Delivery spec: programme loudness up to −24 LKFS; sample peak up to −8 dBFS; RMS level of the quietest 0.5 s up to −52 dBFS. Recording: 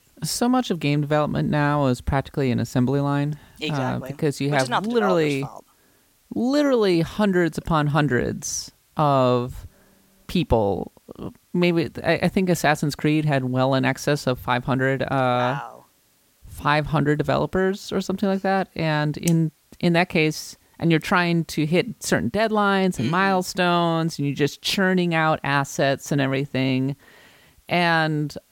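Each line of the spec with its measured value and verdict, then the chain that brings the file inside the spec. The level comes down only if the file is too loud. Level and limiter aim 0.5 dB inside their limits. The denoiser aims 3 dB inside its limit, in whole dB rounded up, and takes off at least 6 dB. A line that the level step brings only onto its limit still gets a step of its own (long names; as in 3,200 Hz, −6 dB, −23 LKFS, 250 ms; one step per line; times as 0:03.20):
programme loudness −22.0 LKFS: out of spec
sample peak −5.0 dBFS: out of spec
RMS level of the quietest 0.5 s −61 dBFS: in spec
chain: level −2.5 dB
brickwall limiter −8.5 dBFS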